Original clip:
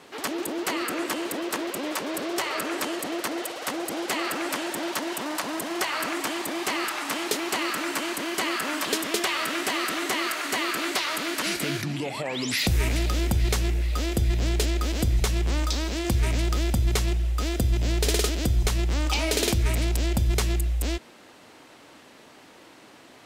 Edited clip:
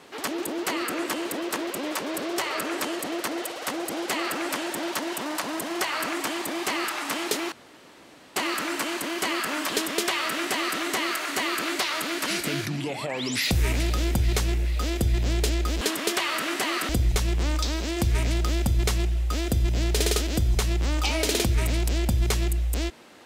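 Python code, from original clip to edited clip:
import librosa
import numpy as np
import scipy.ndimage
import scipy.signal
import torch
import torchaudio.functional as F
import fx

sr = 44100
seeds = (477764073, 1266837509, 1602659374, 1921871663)

y = fx.edit(x, sr, fx.insert_room_tone(at_s=7.52, length_s=0.84),
    fx.duplicate(start_s=8.88, length_s=1.08, to_s=14.97), tone=tone)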